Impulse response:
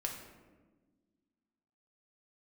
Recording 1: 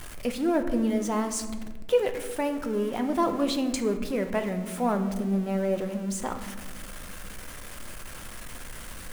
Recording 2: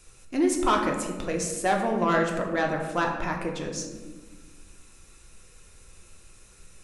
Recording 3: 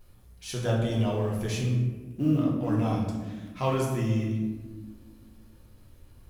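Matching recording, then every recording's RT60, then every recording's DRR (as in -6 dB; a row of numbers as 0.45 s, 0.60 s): 2; 1.4 s, 1.4 s, 1.3 s; 6.5 dB, 0.5 dB, -4.0 dB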